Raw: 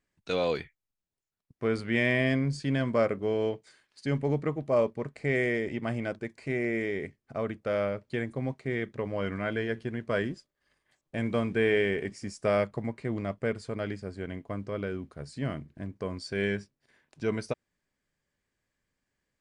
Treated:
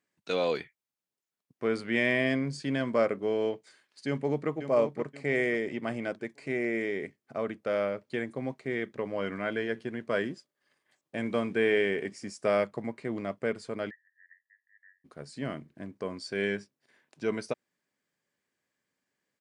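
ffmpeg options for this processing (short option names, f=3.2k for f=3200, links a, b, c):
-filter_complex "[0:a]asplit=2[a][b];[b]afade=t=in:st=4.07:d=0.01,afade=t=out:st=4.49:d=0.01,aecho=0:1:530|1060|1590|2120:0.354813|0.124185|0.0434646|0.0152126[c];[a][c]amix=inputs=2:normalize=0,asplit=3[d][e][f];[d]afade=t=out:st=13.89:d=0.02[g];[e]asuperpass=centerf=1800:order=8:qfactor=7.8,afade=t=in:st=13.89:d=0.02,afade=t=out:st=15.04:d=0.02[h];[f]afade=t=in:st=15.04:d=0.02[i];[g][h][i]amix=inputs=3:normalize=0,highpass=190"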